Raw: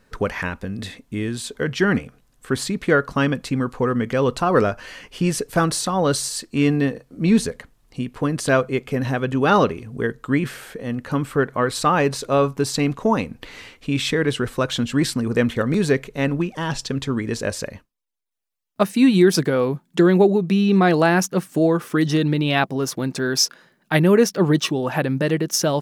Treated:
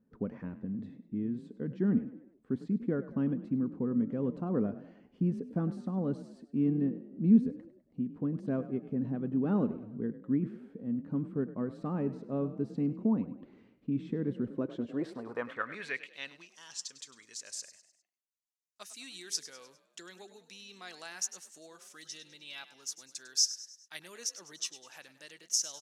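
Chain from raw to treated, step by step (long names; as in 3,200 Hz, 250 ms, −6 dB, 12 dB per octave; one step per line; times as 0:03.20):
0:21.95–0:22.98: notch comb filter 360 Hz
echo with shifted repeats 101 ms, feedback 47%, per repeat +36 Hz, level −14.5 dB
band-pass filter sweep 220 Hz → 6,600 Hz, 0:14.46–0:16.60
level −5 dB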